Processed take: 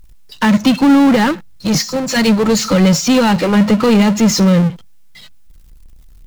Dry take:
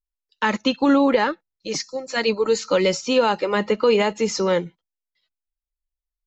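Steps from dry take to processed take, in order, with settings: resonant low shelf 270 Hz +12 dB, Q 1.5; power-law curve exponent 0.5

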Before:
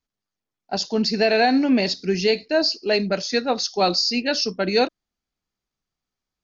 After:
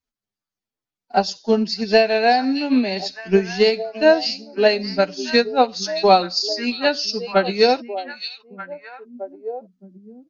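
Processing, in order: dynamic EQ 820 Hz, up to +4 dB, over -30 dBFS, Q 1.8; transient shaper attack +11 dB, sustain -3 dB; time stretch by phase-locked vocoder 1.6×; on a send: delay with a stepping band-pass 0.617 s, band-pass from 3700 Hz, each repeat -1.4 oct, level -6.5 dB; on the sum: gain -3 dB

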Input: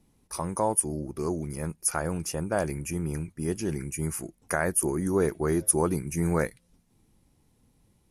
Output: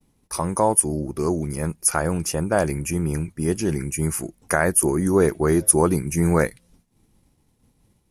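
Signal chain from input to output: expander -59 dBFS; gain +7 dB

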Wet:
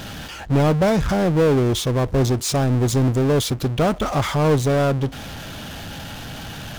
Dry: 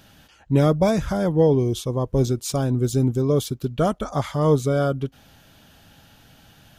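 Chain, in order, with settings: high shelf 8500 Hz -8.5 dB; power-law curve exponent 0.5; gain -3 dB

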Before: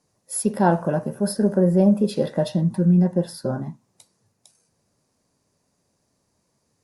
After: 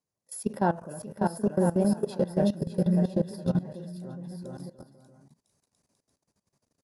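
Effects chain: bouncing-ball echo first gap 0.59 s, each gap 0.7×, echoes 5; level quantiser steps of 17 dB; gain -5 dB

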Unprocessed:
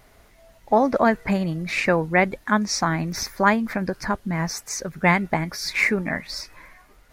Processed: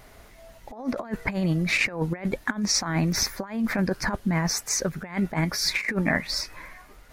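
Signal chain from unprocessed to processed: negative-ratio compressor -25 dBFS, ratio -0.5

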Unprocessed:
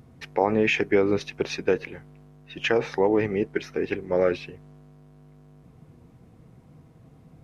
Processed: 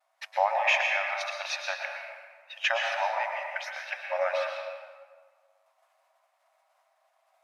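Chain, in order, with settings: expander -45 dBFS; brick-wall FIR high-pass 550 Hz; reverb RT60 1.6 s, pre-delay 0.104 s, DRR 1 dB

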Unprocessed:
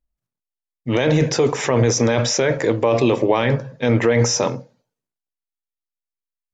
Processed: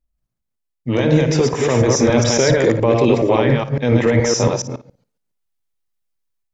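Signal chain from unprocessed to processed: reverse delay 0.14 s, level -2 dB; low shelf 480 Hz +4.5 dB; AGC gain up to 7 dB; on a send: flutter echo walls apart 9.6 m, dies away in 0.23 s; on the sum: gain -1 dB

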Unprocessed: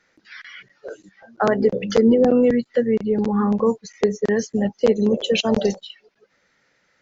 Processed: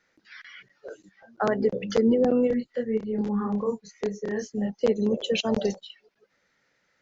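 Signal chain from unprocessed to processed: 2.47–4.78 chorus voices 4, 1.2 Hz, delay 26 ms, depth 3 ms; gain -6 dB

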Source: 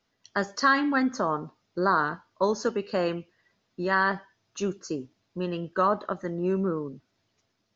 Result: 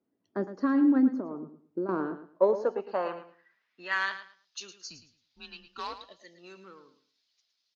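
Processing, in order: 1.15–1.89 compressor 2.5:1, threshold -32 dBFS, peak gain reduction 9 dB; 5.96–6.36 spectral delete 720–1700 Hz; added harmonics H 2 -20 dB, 8 -31 dB, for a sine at -10 dBFS; band-pass sweep 300 Hz -> 4300 Hz, 1.96–4.37; 4.9–6.03 frequency shift -150 Hz; on a send: feedback echo 0.11 s, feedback 22%, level -12 dB; on the sum: gain +5 dB

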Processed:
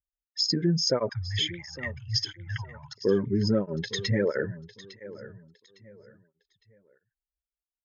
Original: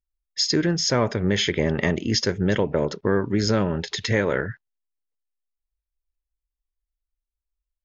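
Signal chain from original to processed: spectral contrast raised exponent 1.8; 1.09–2.98 Chebyshev band-stop 130–810 Hz, order 5; feedback echo 0.857 s, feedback 29%, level -16.5 dB; tape flanging out of phase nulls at 1.5 Hz, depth 4 ms

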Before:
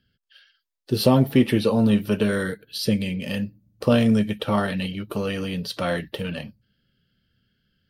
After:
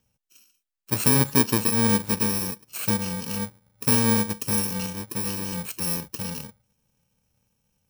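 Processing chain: FFT order left unsorted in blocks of 64 samples; gain -2.5 dB

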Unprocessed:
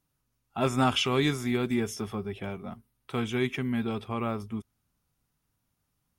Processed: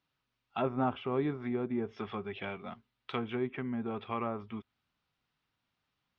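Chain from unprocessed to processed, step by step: LPF 3800 Hz 24 dB/oct; treble ducked by the level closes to 730 Hz, closed at -25 dBFS; tilt +3 dB/oct

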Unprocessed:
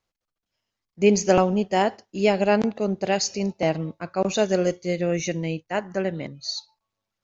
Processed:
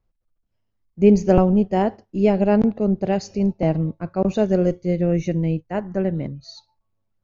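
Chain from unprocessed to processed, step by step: tilt -4 dB/oct; gain -2.5 dB

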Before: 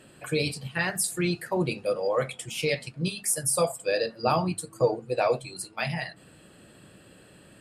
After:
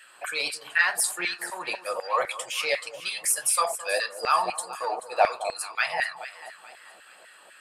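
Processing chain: vibrato 9.1 Hz 23 cents; echo with dull and thin repeats by turns 0.216 s, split 1000 Hz, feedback 64%, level -11 dB; in parallel at -9 dB: soft clip -20.5 dBFS, distortion -14 dB; on the sum: LFO high-pass saw down 4 Hz 680–1800 Hz

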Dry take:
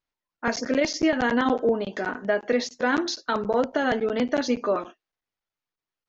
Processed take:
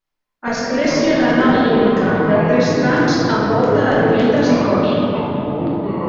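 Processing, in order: shoebox room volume 200 m³, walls hard, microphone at 1.1 m; echoes that change speed 0.22 s, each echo -7 st, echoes 2, each echo -6 dB

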